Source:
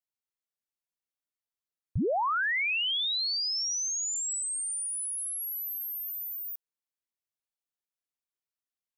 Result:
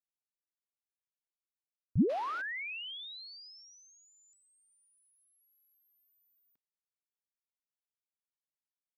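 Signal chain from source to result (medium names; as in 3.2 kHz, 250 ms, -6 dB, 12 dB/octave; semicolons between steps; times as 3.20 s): peaking EQ 220 Hz +13.5 dB 1.5 oct; painted sound noise, 2.09–2.42 s, 250–12000 Hz -35 dBFS; distance through air 320 m; buffer glitch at 4.10/5.51 s, samples 1024, times 9; trim -7.5 dB; Opus 256 kbps 48 kHz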